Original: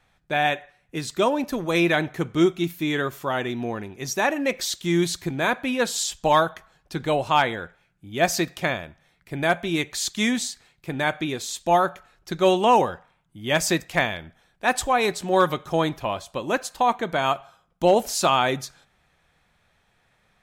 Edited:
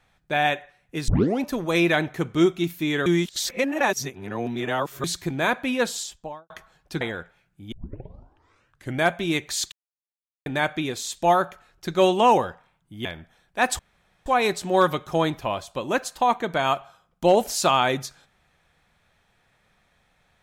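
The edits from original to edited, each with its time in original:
1.08 s: tape start 0.33 s
3.06–5.04 s: reverse
5.77–6.50 s: studio fade out
7.01–7.45 s: delete
8.16 s: tape start 1.32 s
10.16–10.90 s: mute
13.49–14.11 s: delete
14.85 s: insert room tone 0.47 s

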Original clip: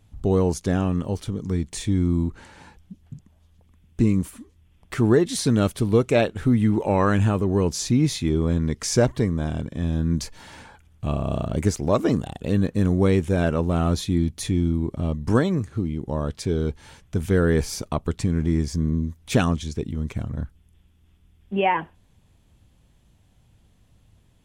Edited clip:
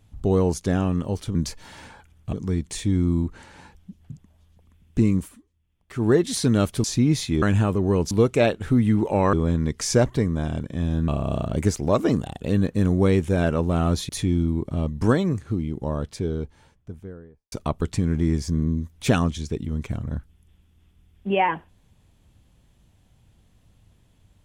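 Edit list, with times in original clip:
4.19–5.17 s: dip -14 dB, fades 0.26 s
5.86–7.08 s: swap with 7.77–8.35 s
10.10–11.08 s: move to 1.35 s
14.09–14.35 s: delete
15.86–17.78 s: studio fade out

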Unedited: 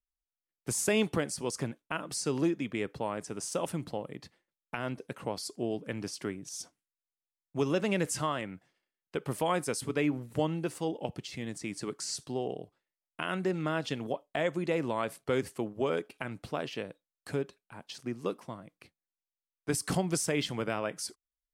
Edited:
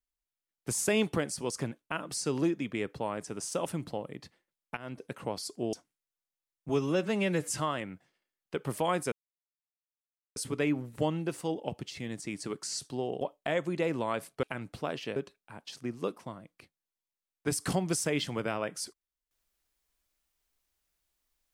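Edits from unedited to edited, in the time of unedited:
4.77–5.05 s: fade in, from -14.5 dB
5.73–6.61 s: delete
7.57–8.11 s: stretch 1.5×
9.73 s: insert silence 1.24 s
12.58–14.10 s: delete
15.32–16.13 s: delete
16.86–17.38 s: delete

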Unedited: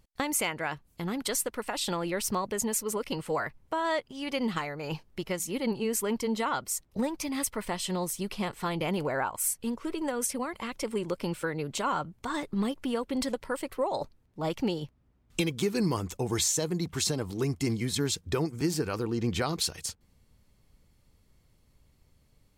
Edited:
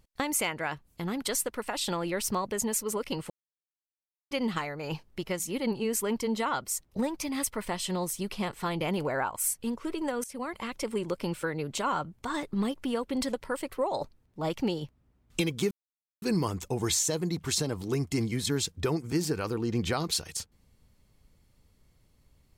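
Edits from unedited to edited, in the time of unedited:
3.30–4.31 s: mute
10.24–10.49 s: fade in, from -19 dB
15.71 s: insert silence 0.51 s

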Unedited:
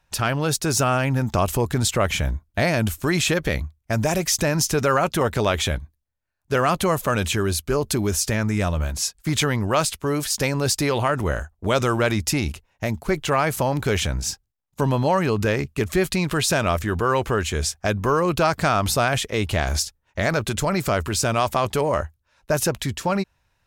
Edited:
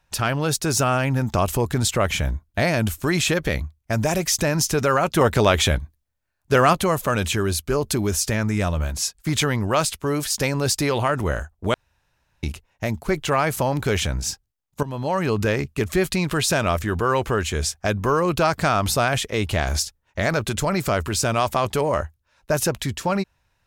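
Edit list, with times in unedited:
5.17–6.73 s: gain +4 dB
11.74–12.43 s: room tone
14.83–15.32 s: fade in, from -15 dB

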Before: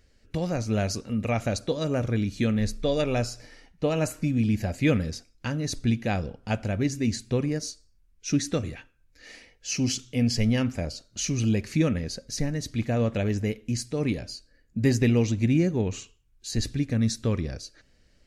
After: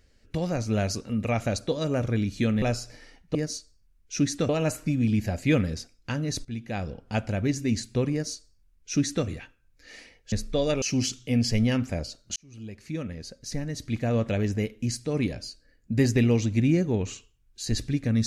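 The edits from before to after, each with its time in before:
2.62–3.12 s: move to 9.68 s
5.81–6.44 s: fade in, from -15 dB
7.48–8.62 s: copy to 3.85 s
11.22–13.07 s: fade in

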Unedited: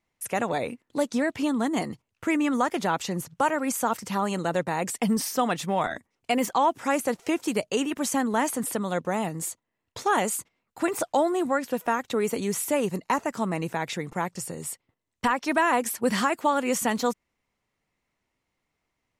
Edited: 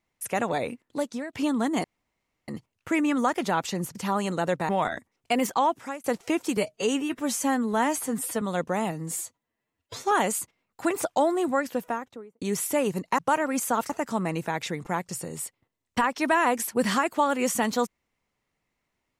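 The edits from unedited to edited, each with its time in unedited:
0.82–1.33 s: fade out, to -14.5 dB
1.84 s: insert room tone 0.64 s
3.31–4.02 s: move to 13.16 s
4.76–5.68 s: delete
6.46–7.03 s: fade out equal-power
7.56–8.79 s: stretch 1.5×
9.29–10.09 s: stretch 1.5×
11.58–12.39 s: studio fade out

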